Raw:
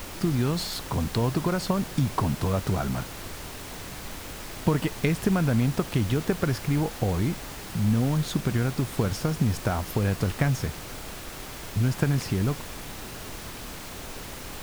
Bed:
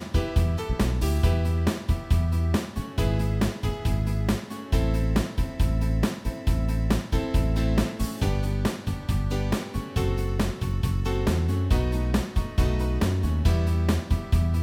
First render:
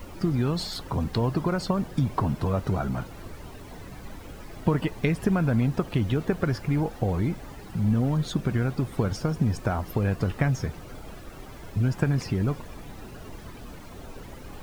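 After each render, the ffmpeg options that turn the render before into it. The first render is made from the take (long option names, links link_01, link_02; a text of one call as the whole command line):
ffmpeg -i in.wav -af "afftdn=noise_reduction=13:noise_floor=-39" out.wav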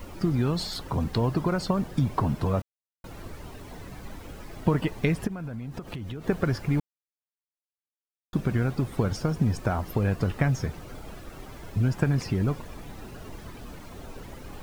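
ffmpeg -i in.wav -filter_complex "[0:a]asplit=3[link_01][link_02][link_03];[link_01]afade=type=out:start_time=5.26:duration=0.02[link_04];[link_02]acompressor=threshold=-32dB:ratio=8:attack=3.2:release=140:knee=1:detection=peak,afade=type=in:start_time=5.26:duration=0.02,afade=type=out:start_time=6.24:duration=0.02[link_05];[link_03]afade=type=in:start_time=6.24:duration=0.02[link_06];[link_04][link_05][link_06]amix=inputs=3:normalize=0,asplit=5[link_07][link_08][link_09][link_10][link_11];[link_07]atrim=end=2.62,asetpts=PTS-STARTPTS,afade=type=out:start_time=2.616:duration=0.004:curve=hsin[link_12];[link_08]atrim=start=2.62:end=3.04,asetpts=PTS-STARTPTS,volume=0[link_13];[link_09]atrim=start=3.04:end=6.8,asetpts=PTS-STARTPTS,afade=type=in:duration=0.004:curve=hsin,afade=type=out:start_time=3.756:duration=0.004:curve=hsin[link_14];[link_10]atrim=start=6.8:end=8.33,asetpts=PTS-STARTPTS,volume=0[link_15];[link_11]atrim=start=8.33,asetpts=PTS-STARTPTS,afade=type=in:duration=0.004:curve=hsin[link_16];[link_12][link_13][link_14][link_15][link_16]concat=n=5:v=0:a=1" out.wav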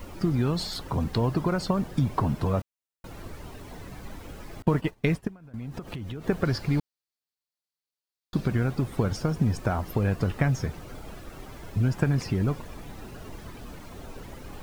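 ffmpeg -i in.wav -filter_complex "[0:a]asettb=1/sr,asplit=3[link_01][link_02][link_03];[link_01]atrim=end=4.624[link_04];[link_02]atrim=start=4.62:end=5.54,asetpts=PTS-STARTPTS,afade=type=in:duration=0.004:curve=qsin,afade=type=out:start_time=0.916:duration=0.004:curve=qsin,agate=range=-33dB:threshold=-26dB:ratio=3:release=100:detection=peak[link_05];[link_03]atrim=start=5.536[link_06];[link_04][link_05]acrossfade=duration=0.004:curve1=hsin:curve2=qsin[link_07];[link_07][link_06]acrossfade=duration=0.004:curve1=qsin:curve2=hsin,asettb=1/sr,asplit=3[link_08][link_09][link_10];[link_08]atrim=end=6.454[link_11];[link_09]atrim=start=6.45:end=8.48,asetpts=PTS-STARTPTS,afade=type=in:duration=0.004:curve=qsin,afade=type=out:start_time=2.026:duration=0.004:curve=qsin,equalizer=frequency=4400:width=2.7:gain=9.5[link_12];[link_10]atrim=start=8.476[link_13];[link_11][link_12]acrossfade=duration=0.004:curve1=hsin:curve2=qsin[link_14];[link_14][link_13]acrossfade=duration=0.004:curve1=qsin:curve2=hsin" out.wav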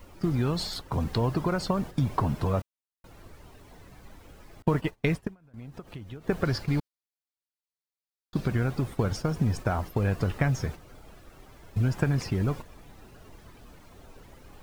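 ffmpeg -i in.wav -af "agate=range=-8dB:threshold=-34dB:ratio=16:detection=peak,equalizer=frequency=220:width=0.92:gain=-2.5" out.wav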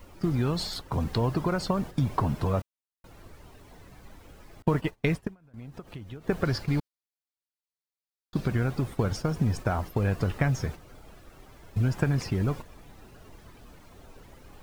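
ffmpeg -i in.wav -af anull out.wav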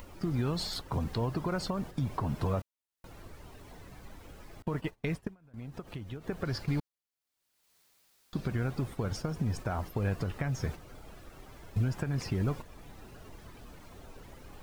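ffmpeg -i in.wav -af "alimiter=limit=-21.5dB:level=0:latency=1:release=369,acompressor=mode=upward:threshold=-46dB:ratio=2.5" out.wav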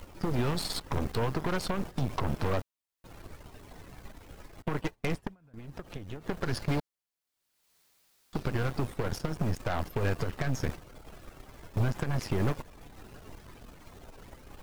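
ffmpeg -i in.wav -af "aeval=exprs='0.0891*(cos(1*acos(clip(val(0)/0.0891,-1,1)))-cos(1*PI/2))+0.0224*(cos(6*acos(clip(val(0)/0.0891,-1,1)))-cos(6*PI/2))':channel_layout=same" out.wav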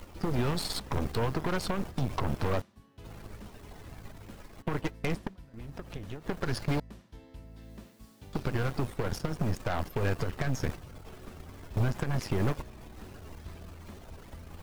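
ffmpeg -i in.wav -i bed.wav -filter_complex "[1:a]volume=-25.5dB[link_01];[0:a][link_01]amix=inputs=2:normalize=0" out.wav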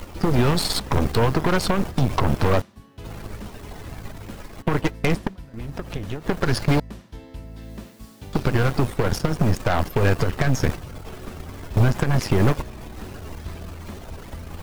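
ffmpeg -i in.wav -af "volume=10.5dB" out.wav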